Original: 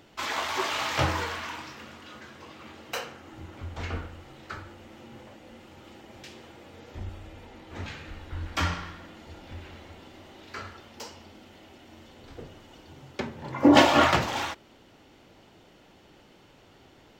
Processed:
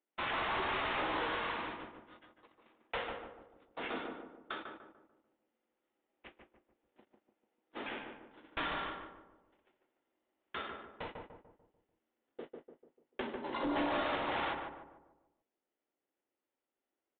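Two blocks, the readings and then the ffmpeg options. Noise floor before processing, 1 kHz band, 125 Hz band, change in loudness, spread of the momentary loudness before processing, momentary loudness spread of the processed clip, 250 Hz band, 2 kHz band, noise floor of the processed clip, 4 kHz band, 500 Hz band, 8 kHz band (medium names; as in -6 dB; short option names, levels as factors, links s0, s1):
-56 dBFS, -9.0 dB, -19.5 dB, -11.5 dB, 24 LU, 18 LU, -15.0 dB, -8.0 dB, under -85 dBFS, -11.5 dB, -10.5 dB, under -35 dB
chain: -filter_complex "[0:a]highpass=f=260:w=0.5412,highpass=f=260:w=1.3066,agate=range=0.0158:threshold=0.00708:ratio=16:detection=peak,acompressor=threshold=0.0398:ratio=5,acrusher=samples=9:mix=1:aa=0.000001,asoftclip=type=tanh:threshold=0.0282,asplit=2[s0][s1];[s1]adelay=147,lowpass=f=1200:p=1,volume=0.708,asplit=2[s2][s3];[s3]adelay=147,lowpass=f=1200:p=1,volume=0.48,asplit=2[s4][s5];[s5]adelay=147,lowpass=f=1200:p=1,volume=0.48,asplit=2[s6][s7];[s7]adelay=147,lowpass=f=1200:p=1,volume=0.48,asplit=2[s8][s9];[s9]adelay=147,lowpass=f=1200:p=1,volume=0.48,asplit=2[s10][s11];[s11]adelay=147,lowpass=f=1200:p=1,volume=0.48[s12];[s0][s2][s4][s6][s8][s10][s12]amix=inputs=7:normalize=0,aresample=8000,aresample=44100"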